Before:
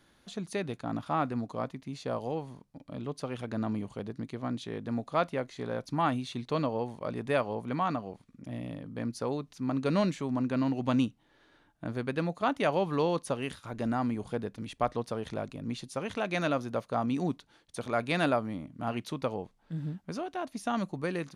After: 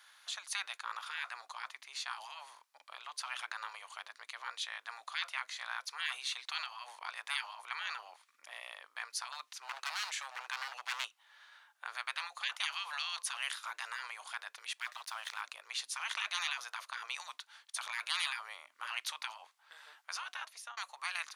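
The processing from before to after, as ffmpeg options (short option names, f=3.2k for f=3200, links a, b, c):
-filter_complex "[0:a]asettb=1/sr,asplit=3[a][b][c];[a]atrim=end=9.324[d];[b]atrim=start=9.32:end=11.05,asetpts=PTS-STARTPTS,afade=t=in:d=0.004:c=qsin,afade=t=out:st=1.726:d=0.004:c=qsin,asoftclip=type=hard:threshold=-28dB[e];[c]atrim=start=11.046[f];[d][e]acrossfade=d=0.004:c1=hsin:c2=qsin[g];[g][f]acrossfade=d=0.004:c1=qsin:c2=hsin,asettb=1/sr,asplit=3[h][i][j];[h]atrim=end=14.804[k];[i]atrim=start=14.8:end=15.41,asetpts=PTS-STARTPTS,afade=t=in:d=0.004:c=qsin,afade=t=out:st=0.606:d=0.004:c=qsin,aeval=exprs='sgn(val(0))*max(abs(val(0))-0.00141,0)':c=same[l];[j]atrim=start=15.406[m];[k][l]acrossfade=d=0.004:c1=hsin:c2=qsin[n];[n][m]acrossfade=d=0.004:c1=qsin:c2=hsin,asplit=2[o][p];[o]atrim=end=20.77,asetpts=PTS-STARTPTS,afade=t=out:st=20.31:d=0.46[q];[p]atrim=start=20.77,asetpts=PTS-STARTPTS,afade=t=in:d=0.004:c=hsin[r];[q][r]concat=n=2:v=0:a=1,afftfilt=real='re*lt(hypot(re,im),0.0398)':imag='im*lt(hypot(re,im),0.0398)':win_size=1024:overlap=0.75,highpass=f=1k:w=0.5412,highpass=f=1k:w=1.3066,volume=7dB"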